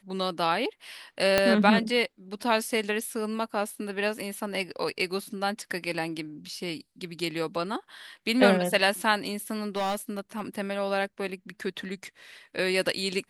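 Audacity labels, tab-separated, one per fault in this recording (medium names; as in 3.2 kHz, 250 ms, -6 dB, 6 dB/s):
1.380000	1.380000	pop -6 dBFS
9.760000	10.410000	clipped -24.5 dBFS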